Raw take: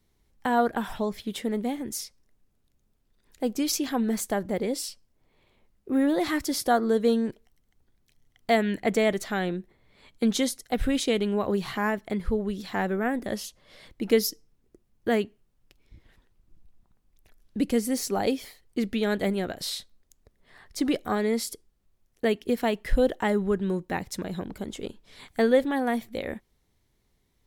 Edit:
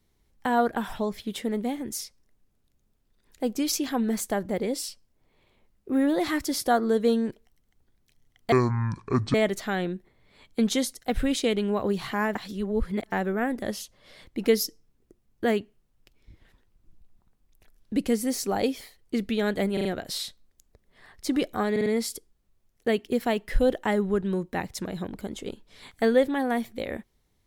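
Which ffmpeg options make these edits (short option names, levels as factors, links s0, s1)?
-filter_complex "[0:a]asplit=11[s0][s1][s2][s3][s4][s5][s6][s7][s8][s9][s10];[s0]atrim=end=8.524[s11];[s1]atrim=start=8.52:end=8.98,asetpts=PTS-STARTPTS,asetrate=24696,aresample=44100[s12];[s2]atrim=start=8.976:end=11.992[s13];[s3]atrim=start=11.988:end=12.762,asetpts=PTS-STARTPTS,areverse[s14];[s4]atrim=start=12.758:end=19.412[s15];[s5]atrim=start=19.368:end=19.412[s16];[s6]atrim=start=19.368:end=19.412[s17];[s7]atrim=start=19.368:end=21.282[s18];[s8]atrim=start=21.228:end=21.282[s19];[s9]atrim=start=21.228:end=21.282[s20];[s10]atrim=start=21.228[s21];[s11][s12]acrossfade=d=0.004:c1=hsin:c2=hsin[s22];[s22][s13]acrossfade=d=0.004:c1=hsin:c2=hsin[s23];[s23][s14]acrossfade=d=0.004:c1=hsin:c2=hsin[s24];[s24][s15]acrossfade=d=0.004:c1=hsin:c2=hsin[s25];[s25][s16]acrossfade=d=0.004:c1=hsin:c2=hsin[s26];[s26][s17]acrossfade=d=0.004:c1=hsin:c2=hsin[s27];[s27][s18]acrossfade=d=0.004:c1=hsin:c2=hsin[s28];[s28][s19]acrossfade=d=0.004:c1=hsin:c2=hsin[s29];[s29][s20]acrossfade=d=0.004:c1=hsin:c2=hsin[s30];[s30][s21]acrossfade=d=0.004:c1=hsin:c2=hsin"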